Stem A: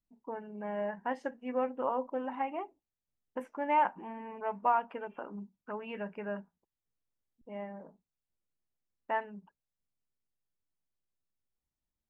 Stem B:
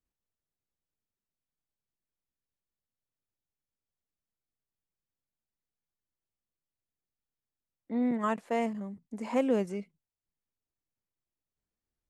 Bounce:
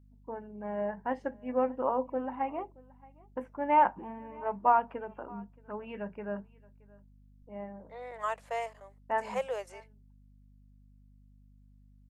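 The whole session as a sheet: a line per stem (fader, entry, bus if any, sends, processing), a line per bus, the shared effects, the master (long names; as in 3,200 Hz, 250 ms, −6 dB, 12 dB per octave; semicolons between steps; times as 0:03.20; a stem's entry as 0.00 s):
+2.5 dB, 0.00 s, no send, echo send −24 dB, high-shelf EQ 2,300 Hz −11.5 dB; multiband upward and downward expander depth 40%
−1.5 dB, 0.00 s, no send, no echo send, Butterworth high-pass 510 Hz; mains hum 50 Hz, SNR 13 dB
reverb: not used
echo: single-tap delay 624 ms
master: no processing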